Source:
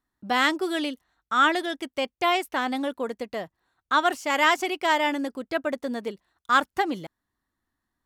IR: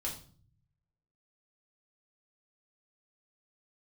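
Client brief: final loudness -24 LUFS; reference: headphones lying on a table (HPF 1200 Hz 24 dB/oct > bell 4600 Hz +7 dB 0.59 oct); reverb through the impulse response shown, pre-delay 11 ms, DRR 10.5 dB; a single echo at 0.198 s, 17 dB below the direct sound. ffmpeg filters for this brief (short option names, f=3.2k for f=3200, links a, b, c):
-filter_complex "[0:a]aecho=1:1:198:0.141,asplit=2[a][b];[1:a]atrim=start_sample=2205,adelay=11[c];[b][c]afir=irnorm=-1:irlink=0,volume=-12dB[d];[a][d]amix=inputs=2:normalize=0,highpass=f=1.2k:w=0.5412,highpass=f=1.2k:w=1.3066,equalizer=f=4.6k:t=o:w=0.59:g=7,volume=2.5dB"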